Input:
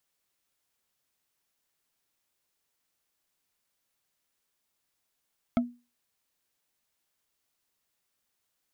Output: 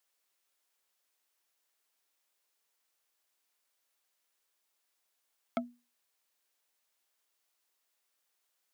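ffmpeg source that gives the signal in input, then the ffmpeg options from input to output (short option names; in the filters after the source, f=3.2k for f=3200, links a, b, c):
-f lavfi -i "aevalsrc='0.119*pow(10,-3*t/0.3)*sin(2*PI*242*t)+0.0668*pow(10,-3*t/0.089)*sin(2*PI*667.2*t)+0.0376*pow(10,-3*t/0.04)*sin(2*PI*1307.8*t)+0.0211*pow(10,-3*t/0.022)*sin(2*PI*2161.8*t)+0.0119*pow(10,-3*t/0.013)*sin(2*PI*3228.3*t)':d=0.45:s=44100"
-af "highpass=400"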